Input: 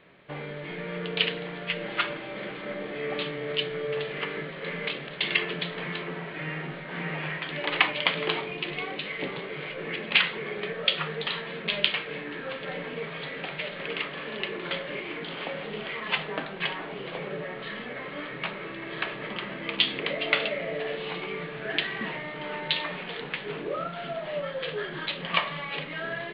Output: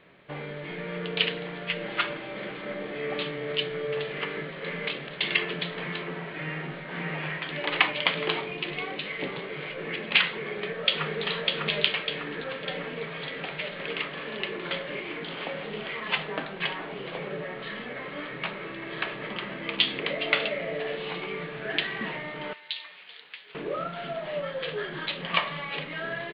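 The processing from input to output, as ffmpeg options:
-filter_complex "[0:a]asplit=2[a][b];[b]afade=t=in:st=10.31:d=0.01,afade=t=out:st=11.24:d=0.01,aecho=0:1:600|1200|1800|2400|3000|3600|4200|4800:0.707946|0.38937|0.214154|0.117784|0.0647815|0.0356298|0.0195964|0.010778[c];[a][c]amix=inputs=2:normalize=0,asettb=1/sr,asplit=3[d][e][f];[d]atrim=end=22.534[g];[e]atrim=start=22.53:end=23.55,asetpts=PTS-STARTPTS,afade=t=in:d=0.004:c=qsin,afade=t=out:st=1.016:d=0.004:c=qsin,aderivative[h];[f]atrim=start=23.546[i];[g][h]acrossfade=d=0.004:c1=hsin:c2=qsin[j];[j][i]acrossfade=d=0.004:c1=qsin:c2=hsin"

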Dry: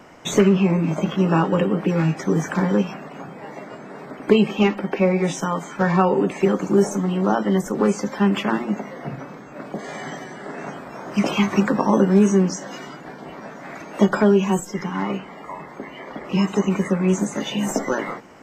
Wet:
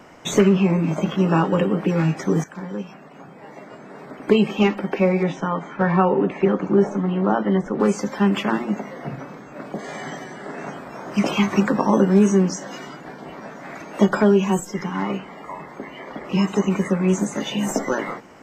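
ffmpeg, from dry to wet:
-filter_complex "[0:a]asettb=1/sr,asplit=3[a][b][c];[a]atrim=end=5.234[d];[b]atrim=start=5.23:end=7.8,asetpts=PTS-STARTPTS,afade=t=in:d=0.004:c=qsin,afade=t=out:st=2.566:d=0.004:c=qsin,lowpass=2.7k[e];[c]atrim=start=7.796[f];[d][e]acrossfade=d=0.004:c1=hsin:c2=qsin[g];[g][f]acrossfade=d=0.004:c1=qsin:c2=hsin,asplit=2[h][i];[h]atrim=end=2.44,asetpts=PTS-STARTPTS,afade=t=out:st=2.436:d=0.004:c=hsin:silence=0.177828[j];[i]atrim=start=2.44,asetpts=PTS-STARTPTS,afade=t=in:d=2.17:silence=0.177828[k];[j][k]concat=n=2:v=0:a=1"

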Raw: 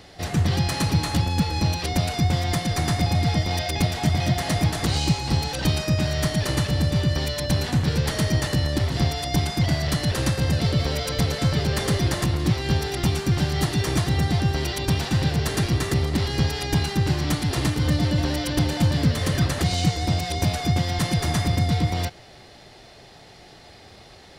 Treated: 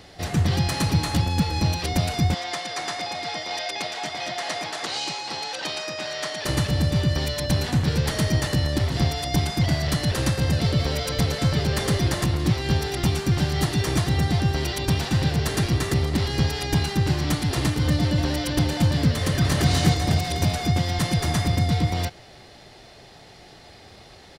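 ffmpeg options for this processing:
-filter_complex "[0:a]asettb=1/sr,asplit=3[a][b][c];[a]atrim=end=2.344[d];[b]atrim=start=2.34:end=6.45,asetpts=PTS-STARTPTS,afade=t=in:d=0.004:c=qsin,afade=t=out:st=4.106:d=0.004:c=qsin,highpass=550,lowpass=7.1k[e];[c]atrim=start=6.446[f];[d][e]acrossfade=d=0.004:c1=hsin:c2=qsin[g];[g][f]acrossfade=d=0.004:c1=qsin:c2=hsin,asplit=2[h][i];[i]afade=t=in:st=19.19:d=0.01,afade=t=out:st=19.69:d=0.01,aecho=0:1:250|500|750|1000|1250|1500|1750|2000:0.841395|0.462767|0.254522|0.139987|0.0769929|0.0423461|0.0232904|0.0128097[j];[h][j]amix=inputs=2:normalize=0"

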